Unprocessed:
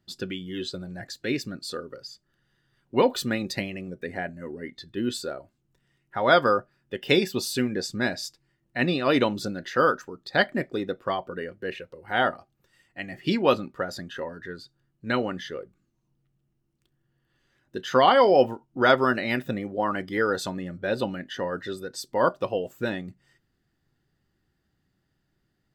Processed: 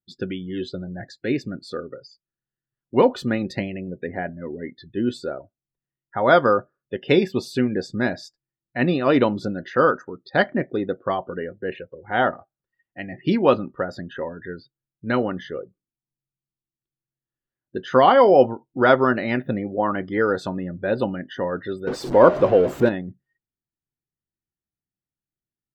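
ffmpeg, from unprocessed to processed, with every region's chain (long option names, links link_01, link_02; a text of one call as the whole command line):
ffmpeg -i in.wav -filter_complex "[0:a]asettb=1/sr,asplit=3[link_01][link_02][link_03];[link_01]atrim=end=21.874[link_04];[link_02]atrim=start=21.87:end=22.89,asetpts=PTS-STARTPTS,afade=type=in:duration=0.004:curve=qsin,afade=type=out:start_time=1.016:duration=0.004:curve=qsin,aeval=exprs='val(0)+0.5*0.0355*sgn(val(0))':channel_layout=same,equalizer=frequency=410:width_type=o:width=1.9:gain=6[link_05];[link_03]atrim=start=22.886[link_06];[link_04][link_05]acrossfade=duration=0.004:curve1=hsin:curve2=qsin[link_07];[link_07][link_06]acrossfade=duration=0.004:curve1=qsin:curve2=hsin,afftdn=noise_reduction=27:noise_floor=-47,lowpass=frequency=1400:poles=1,volume=5dB" out.wav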